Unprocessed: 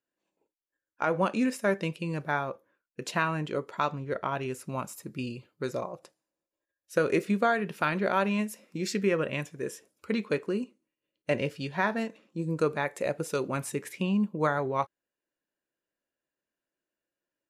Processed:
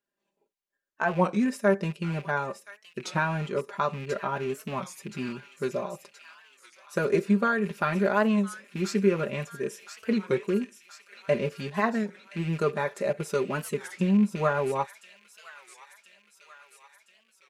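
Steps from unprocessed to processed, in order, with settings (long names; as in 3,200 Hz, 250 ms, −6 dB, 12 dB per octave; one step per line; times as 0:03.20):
loose part that buzzes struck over −37 dBFS, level −31 dBFS
high-shelf EQ 7,500 Hz −5.5 dB
comb filter 5 ms, depth 78%
dynamic equaliser 2,800 Hz, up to −6 dB, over −43 dBFS, Q 1.2
on a send: delay with a high-pass on its return 1,024 ms, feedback 60%, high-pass 2,200 Hz, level −8.5 dB
on the sum: wow of a warped record 33 1/3 rpm, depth 160 cents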